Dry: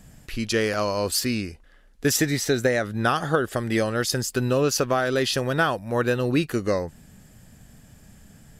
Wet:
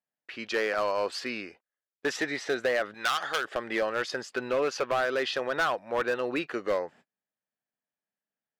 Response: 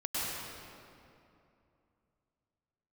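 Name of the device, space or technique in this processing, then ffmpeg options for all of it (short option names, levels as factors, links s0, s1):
walkie-talkie: -filter_complex "[0:a]highpass=510,lowpass=2700,asoftclip=type=hard:threshold=0.0891,agate=range=0.0178:threshold=0.00282:ratio=16:detection=peak,asettb=1/sr,asplit=3[s0][s1][s2];[s0]atrim=end=2.944[s3];[s1]atrim=start=2.94:end=3.45,asetpts=PTS-STARTPTS,afade=t=in:d=0.004:c=qsin,afade=t=out:st=0.506:d=0.004:c=qsin,tiltshelf=f=1400:g=-9.5[s4];[s2]atrim=start=3.446[s5];[s3][s4]acrossfade=d=0.004:c1=hsin:c2=qsin[s6];[s6][s5]acrossfade=d=0.004:c1=qsin:c2=hsin"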